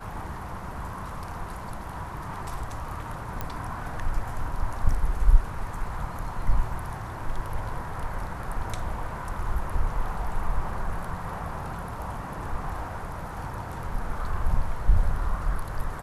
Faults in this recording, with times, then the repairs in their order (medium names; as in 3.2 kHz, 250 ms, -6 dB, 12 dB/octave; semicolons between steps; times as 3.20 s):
3.41 s: pop -16 dBFS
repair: de-click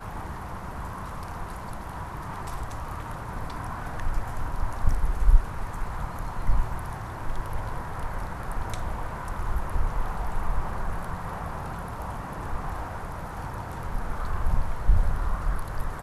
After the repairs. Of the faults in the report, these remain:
3.41 s: pop